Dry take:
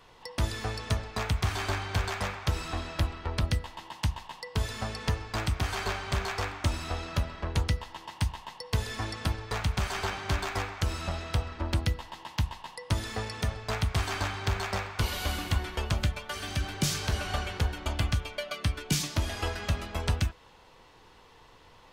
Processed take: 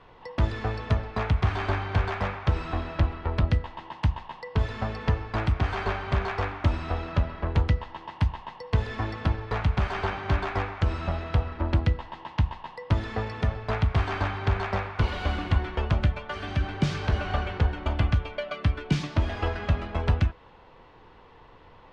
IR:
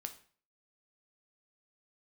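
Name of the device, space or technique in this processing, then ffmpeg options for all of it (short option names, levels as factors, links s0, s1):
phone in a pocket: -af "lowpass=3400,highshelf=f=2400:g=-8.5,volume=1.78"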